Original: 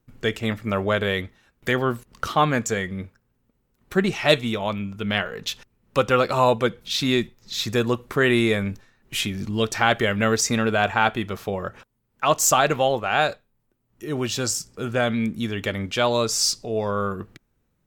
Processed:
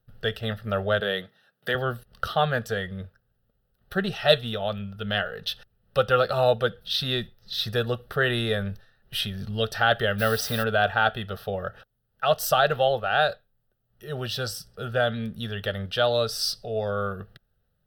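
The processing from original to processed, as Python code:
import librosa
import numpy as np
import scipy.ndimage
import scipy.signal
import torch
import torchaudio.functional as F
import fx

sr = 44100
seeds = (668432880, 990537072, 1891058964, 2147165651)

y = fx.highpass(x, sr, hz=150.0, slope=24, at=(1.0, 1.75))
y = fx.dmg_noise_colour(y, sr, seeds[0], colour='white', level_db=-34.0, at=(10.18, 10.62), fade=0.02)
y = fx.fixed_phaser(y, sr, hz=1500.0, stages=8)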